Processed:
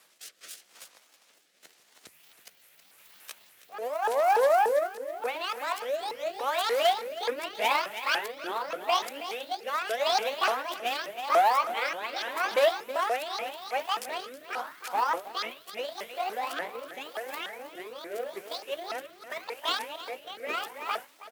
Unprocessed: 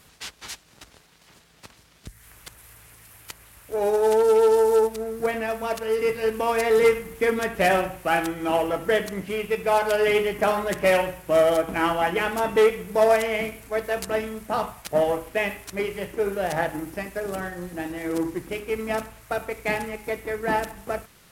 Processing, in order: repeated pitch sweeps +12 st, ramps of 0.291 s; HPF 530 Hz 12 dB/oct; echo 0.321 s -11.5 dB; rotary speaker horn 0.85 Hz; gain -1.5 dB

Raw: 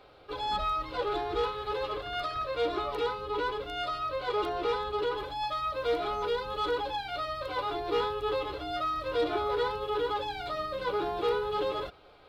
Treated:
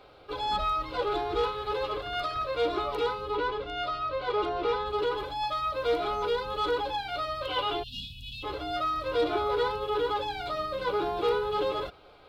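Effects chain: 7.43–7.89 bell 3000 Hz +14.5 dB 0.28 oct; notch 1800 Hz, Q 13; 3.35–4.86 air absorption 84 m; 7.83–8.43 spectral delete 270–2500 Hz; gain +2 dB

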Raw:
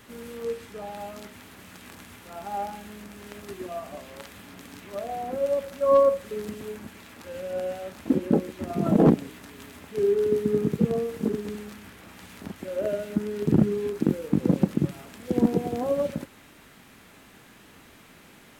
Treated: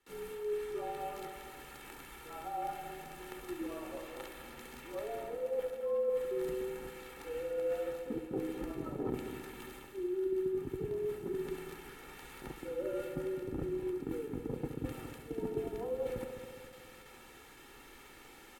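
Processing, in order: gate with hold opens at -42 dBFS; bell 140 Hz -7.5 dB 0.6 oct; comb 2.2 ms, depth 70%; dynamic EQ 5500 Hz, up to -7 dB, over -57 dBFS, Q 1.1; reverse; compressor 6:1, threshold -30 dBFS, peak gain reduction 16 dB; reverse; frequency shift -44 Hz; on a send: multi-head echo 69 ms, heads first and third, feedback 65%, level -11 dB; on the sum: gain -5 dB

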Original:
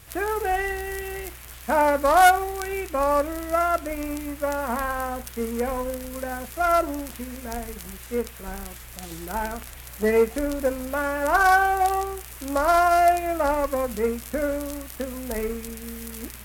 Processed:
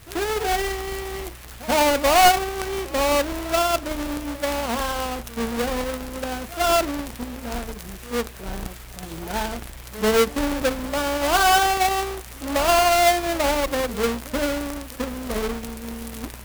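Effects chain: half-waves squared off; pre-echo 87 ms -17.5 dB; gain -3 dB

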